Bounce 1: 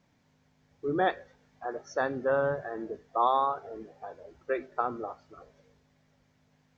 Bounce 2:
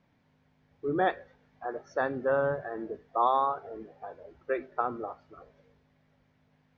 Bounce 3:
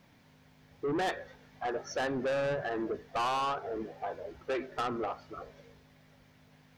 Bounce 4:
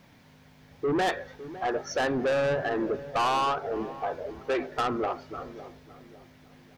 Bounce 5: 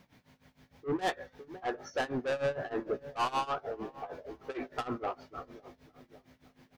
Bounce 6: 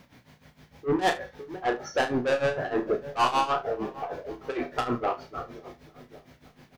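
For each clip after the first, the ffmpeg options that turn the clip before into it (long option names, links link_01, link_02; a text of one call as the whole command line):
ffmpeg -i in.wav -af "lowpass=3500" out.wav
ffmpeg -i in.wav -filter_complex "[0:a]highshelf=frequency=3400:gain=11,asplit=2[link_01][link_02];[link_02]acompressor=threshold=-33dB:ratio=6,volume=1dB[link_03];[link_01][link_03]amix=inputs=2:normalize=0,asoftclip=type=tanh:threshold=-28dB" out.wav
ffmpeg -i in.wav -filter_complex "[0:a]asplit=2[link_01][link_02];[link_02]adelay=557,lowpass=frequency=930:poles=1,volume=-14dB,asplit=2[link_03][link_04];[link_04]adelay=557,lowpass=frequency=930:poles=1,volume=0.42,asplit=2[link_05][link_06];[link_06]adelay=557,lowpass=frequency=930:poles=1,volume=0.42,asplit=2[link_07][link_08];[link_08]adelay=557,lowpass=frequency=930:poles=1,volume=0.42[link_09];[link_01][link_03][link_05][link_07][link_09]amix=inputs=5:normalize=0,volume=5.5dB" out.wav
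ffmpeg -i in.wav -filter_complex "[0:a]tremolo=f=6.5:d=0.89,asplit=2[link_01][link_02];[link_02]adelay=16,volume=-12dB[link_03];[link_01][link_03]amix=inputs=2:normalize=0,volume=-3.5dB" out.wav
ffmpeg -i in.wav -af "aecho=1:1:33|73:0.422|0.133,volume=7dB" out.wav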